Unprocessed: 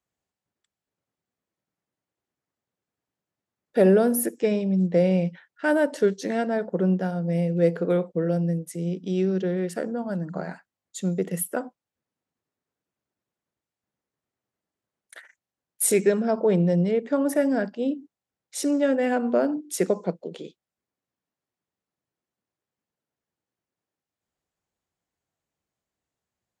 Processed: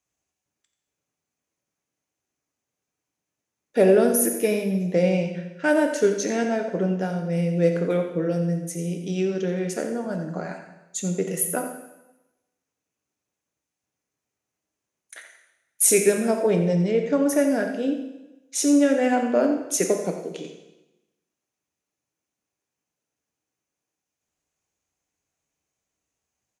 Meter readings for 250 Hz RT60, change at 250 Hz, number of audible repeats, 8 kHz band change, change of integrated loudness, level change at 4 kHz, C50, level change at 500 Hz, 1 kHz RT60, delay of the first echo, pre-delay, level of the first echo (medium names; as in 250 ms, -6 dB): 1.1 s, +1.0 dB, 1, +6.5 dB, +1.5 dB, +4.5 dB, 6.0 dB, +1.5 dB, 1.0 s, 87 ms, 3 ms, -11.0 dB